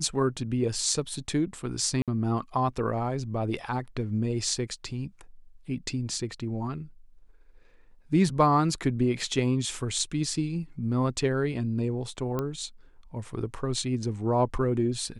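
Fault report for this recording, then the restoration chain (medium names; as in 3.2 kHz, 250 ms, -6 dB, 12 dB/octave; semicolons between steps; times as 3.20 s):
2.02–2.08 s: dropout 57 ms
12.39 s: pop -17 dBFS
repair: de-click; interpolate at 2.02 s, 57 ms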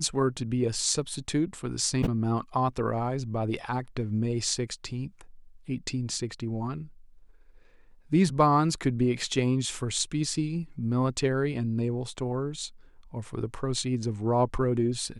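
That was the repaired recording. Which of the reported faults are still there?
nothing left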